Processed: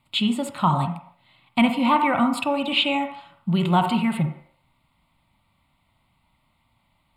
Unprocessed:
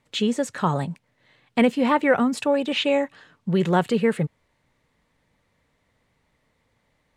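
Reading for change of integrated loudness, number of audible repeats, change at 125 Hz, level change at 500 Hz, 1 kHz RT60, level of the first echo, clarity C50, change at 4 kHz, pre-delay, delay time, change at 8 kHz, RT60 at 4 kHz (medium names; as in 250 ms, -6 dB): +0.5 dB, no echo, +2.5 dB, -7.0 dB, 0.60 s, no echo, 7.0 dB, +4.5 dB, 30 ms, no echo, -2.5 dB, 0.65 s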